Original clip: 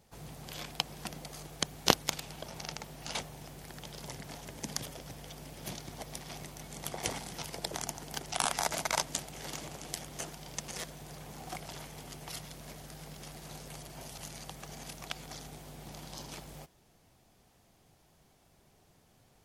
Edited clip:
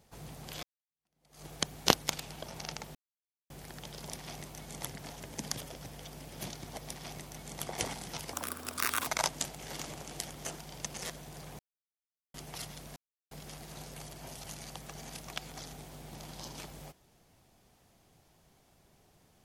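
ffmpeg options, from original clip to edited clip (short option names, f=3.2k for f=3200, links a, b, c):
-filter_complex "[0:a]asplit=12[a][b][c][d][e][f][g][h][i][j][k][l];[a]atrim=end=0.63,asetpts=PTS-STARTPTS,afade=t=out:st=0.626:d=0.004:c=hsin[m];[b]atrim=start=0.63:end=2.95,asetpts=PTS-STARTPTS,afade=t=in:d=0.82:c=exp,afade=t=out:st=2.316:d=0.004:c=hsin[n];[c]atrim=start=2.95:end=3.5,asetpts=PTS-STARTPTS,volume=0[o];[d]atrim=start=3.5:end=4.102,asetpts=PTS-STARTPTS,afade=t=in:d=0.004:c=hsin[p];[e]atrim=start=6.118:end=6.872[q];[f]atrim=start=4.098:end=7.584[r];[g]atrim=start=7.58:end=8.81,asetpts=PTS-STARTPTS,asetrate=73206,aresample=44100[s];[h]atrim=start=8.806:end=11.33,asetpts=PTS-STARTPTS,afade=t=out:st=2.52:d=0.004:c=hsin[t];[i]atrim=start=11.33:end=12.08,asetpts=PTS-STARTPTS,volume=0[u];[j]atrim=start=12.08:end=12.7,asetpts=PTS-STARTPTS,afade=t=in:d=0.004:c=hsin,afade=t=out:st=0.616:d=0.004:c=hsin[v];[k]atrim=start=12.7:end=13.05,asetpts=PTS-STARTPTS,volume=0[w];[l]atrim=start=13.05,asetpts=PTS-STARTPTS,afade=t=in:d=0.004:c=hsin[x];[m][n][o][p]concat=n=4:v=0:a=1[y];[y][q]acrossfade=d=0.004:c1=hsin:c2=hsin[z];[z][r]acrossfade=d=0.004:c1=hsin:c2=hsin[aa];[aa][s]acrossfade=d=0.004:c1=hsin:c2=hsin[ab];[t][u][v][w][x]concat=n=5:v=0:a=1[ac];[ab][ac]acrossfade=d=0.004:c1=hsin:c2=hsin"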